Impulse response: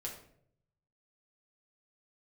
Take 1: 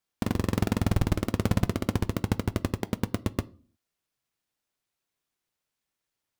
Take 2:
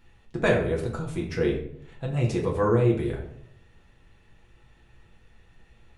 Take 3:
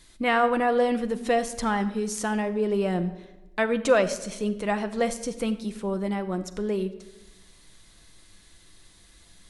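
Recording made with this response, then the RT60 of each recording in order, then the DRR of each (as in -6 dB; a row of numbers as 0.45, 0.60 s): 2; 0.45, 0.65, 1.1 s; 16.0, -2.5, 8.0 dB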